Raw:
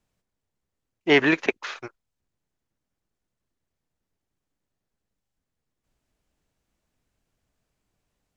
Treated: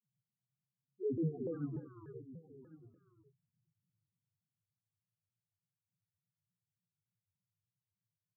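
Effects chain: chord vocoder minor triad, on A#2; Doppler pass-by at 2.5, 21 m/s, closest 1.4 m; LPF 1900 Hz; bell 1100 Hz +3.5 dB 0.67 oct; loudest bins only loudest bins 1; low shelf 240 Hz +12 dB; echo 1.098 s -17.5 dB; non-linear reverb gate 0.47 s rising, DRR 4.5 dB; shaped vibrato saw down 3.4 Hz, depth 250 cents; gain +18 dB

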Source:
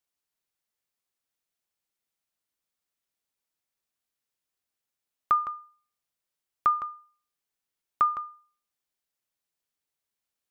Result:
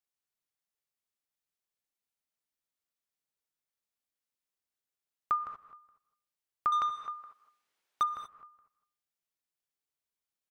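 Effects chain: outdoor echo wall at 72 m, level -25 dB; 6.72–8.03 overdrive pedal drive 24 dB, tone 2300 Hz, clips at -13.5 dBFS; non-linear reverb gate 0.26 s rising, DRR 9.5 dB; gain -6.5 dB

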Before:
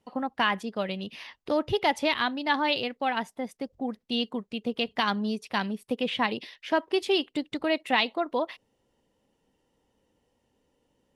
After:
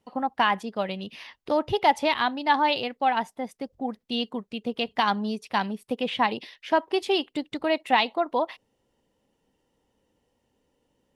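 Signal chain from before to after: dynamic EQ 840 Hz, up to +7 dB, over -42 dBFS, Q 2.1

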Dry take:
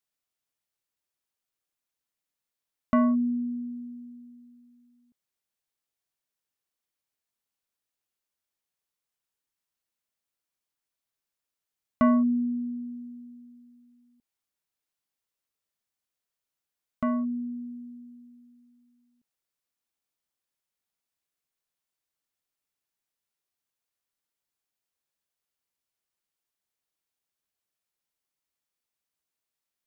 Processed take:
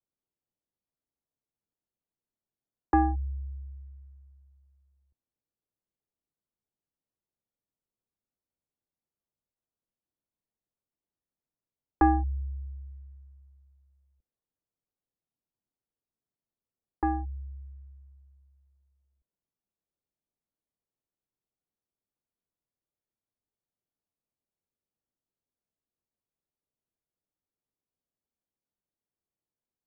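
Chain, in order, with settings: low-pass opened by the level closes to 680 Hz, open at -31 dBFS; mistuned SSB -310 Hz 330–2400 Hz; gain +5 dB

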